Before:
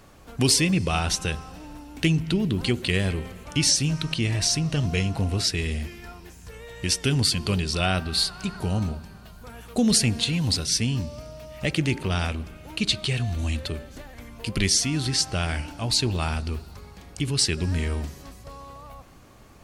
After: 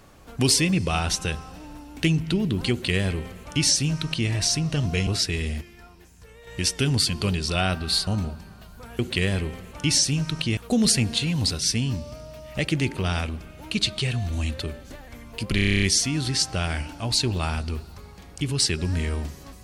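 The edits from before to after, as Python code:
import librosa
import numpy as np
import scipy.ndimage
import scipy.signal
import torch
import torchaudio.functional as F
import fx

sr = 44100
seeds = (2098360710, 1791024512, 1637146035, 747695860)

y = fx.edit(x, sr, fx.duplicate(start_s=2.71, length_s=1.58, to_s=9.63),
    fx.cut(start_s=5.07, length_s=0.25),
    fx.clip_gain(start_s=5.86, length_s=0.86, db=-6.5),
    fx.cut(start_s=8.32, length_s=0.39),
    fx.stutter(start_s=14.61, slice_s=0.03, count=10), tone=tone)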